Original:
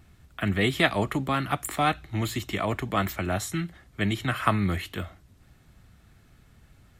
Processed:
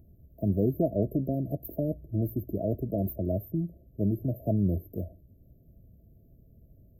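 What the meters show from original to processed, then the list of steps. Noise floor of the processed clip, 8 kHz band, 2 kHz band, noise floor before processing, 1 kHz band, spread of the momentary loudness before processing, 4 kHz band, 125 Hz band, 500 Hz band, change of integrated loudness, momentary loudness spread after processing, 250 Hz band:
-59 dBFS, under -40 dB, under -40 dB, -58 dBFS, under -15 dB, 9 LU, under -40 dB, 0.0 dB, -0.5 dB, -3.0 dB, 7 LU, 0.0 dB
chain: brick-wall FIR band-stop 690–12000 Hz

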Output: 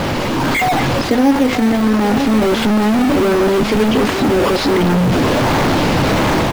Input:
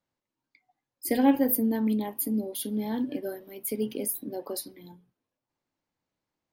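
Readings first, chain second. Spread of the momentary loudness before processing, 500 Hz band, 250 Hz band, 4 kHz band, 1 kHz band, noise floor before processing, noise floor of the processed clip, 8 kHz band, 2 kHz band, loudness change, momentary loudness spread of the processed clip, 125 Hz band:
13 LU, +19.0 dB, +15.0 dB, +24.0 dB, +21.5 dB, under -85 dBFS, -18 dBFS, +8.5 dB, +26.5 dB, +14.5 dB, 2 LU, +25.5 dB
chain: delta modulation 64 kbps, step -22 dBFS; air absorption 200 m; in parallel at -5 dB: decimation with a swept rate 15×, swing 100% 1.4 Hz; on the sum: AGC gain up to 8 dB; on a send: echo 0.934 s -12.5 dB; on the sum: fast leveller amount 50%

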